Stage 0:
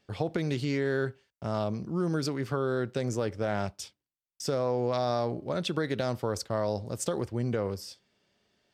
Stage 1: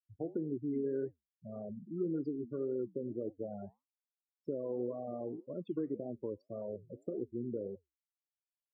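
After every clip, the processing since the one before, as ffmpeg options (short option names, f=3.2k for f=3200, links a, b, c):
-af "afftfilt=real='re*gte(hypot(re,im),0.0891)':imag='im*gte(hypot(re,im),0.0891)':win_size=1024:overlap=0.75,bandpass=f=320:t=q:w=2.2:csg=0,flanger=delay=4.4:depth=6.5:regen=-80:speed=1.8:shape=triangular,volume=2dB"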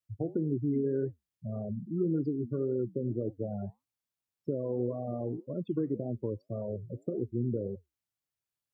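-af "equalizer=f=110:t=o:w=1.4:g=12.5,volume=3dB"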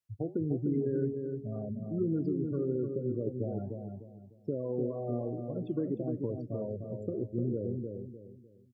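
-filter_complex "[0:a]asplit=2[a][b];[b]adelay=301,lowpass=f=840:p=1,volume=-4dB,asplit=2[c][d];[d]adelay=301,lowpass=f=840:p=1,volume=0.35,asplit=2[e][f];[f]adelay=301,lowpass=f=840:p=1,volume=0.35,asplit=2[g][h];[h]adelay=301,lowpass=f=840:p=1,volume=0.35[i];[a][c][e][g][i]amix=inputs=5:normalize=0,volume=-1.5dB"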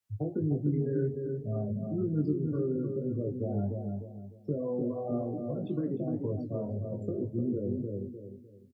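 -filter_complex "[0:a]acrossover=split=150|300|610[a][b][c][d];[c]acompressor=threshold=-46dB:ratio=6[e];[a][b][e][d]amix=inputs=4:normalize=0,flanger=delay=9.6:depth=4.5:regen=-71:speed=1.9:shape=sinusoidal,asplit=2[f][g];[g]adelay=20,volume=-3.5dB[h];[f][h]amix=inputs=2:normalize=0,volume=7dB"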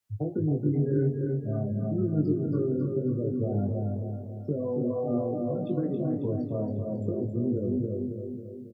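-af "aecho=1:1:273|546|819|1092|1365|1638|1911:0.447|0.241|0.13|0.0703|0.038|0.0205|0.0111,volume=2.5dB"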